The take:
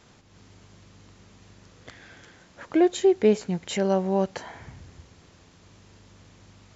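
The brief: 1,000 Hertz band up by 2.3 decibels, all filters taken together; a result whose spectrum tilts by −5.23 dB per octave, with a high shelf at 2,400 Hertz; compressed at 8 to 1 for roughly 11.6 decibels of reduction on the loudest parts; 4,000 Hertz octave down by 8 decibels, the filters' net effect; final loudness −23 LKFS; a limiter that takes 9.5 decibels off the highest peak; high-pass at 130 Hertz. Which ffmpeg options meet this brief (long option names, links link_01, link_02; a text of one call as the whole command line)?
ffmpeg -i in.wav -af "highpass=130,equalizer=frequency=1000:width_type=o:gain=4.5,highshelf=frequency=2400:gain=-5.5,equalizer=frequency=4000:width_type=o:gain=-6,acompressor=threshold=-26dB:ratio=8,volume=16.5dB,alimiter=limit=-10.5dB:level=0:latency=1" out.wav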